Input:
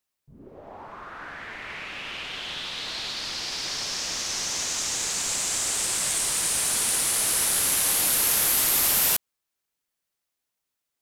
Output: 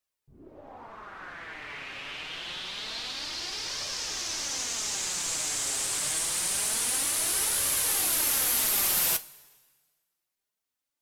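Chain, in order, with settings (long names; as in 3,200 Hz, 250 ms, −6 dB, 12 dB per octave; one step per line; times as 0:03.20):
coupled-rooms reverb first 0.21 s, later 1.5 s, from −18 dB, DRR 10 dB
flanger 0.26 Hz, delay 1.6 ms, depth 5.9 ms, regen +51%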